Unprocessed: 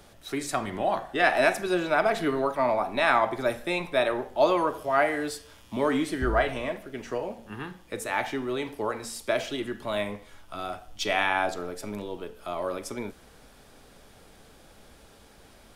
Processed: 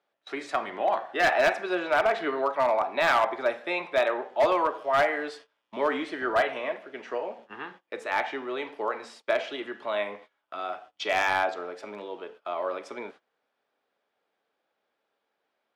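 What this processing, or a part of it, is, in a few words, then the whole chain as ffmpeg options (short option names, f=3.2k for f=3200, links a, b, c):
walkie-talkie: -af "highpass=460,lowpass=3k,asoftclip=type=hard:threshold=-18.5dB,agate=range=-23dB:threshold=-49dB:ratio=16:detection=peak,volume=2dB"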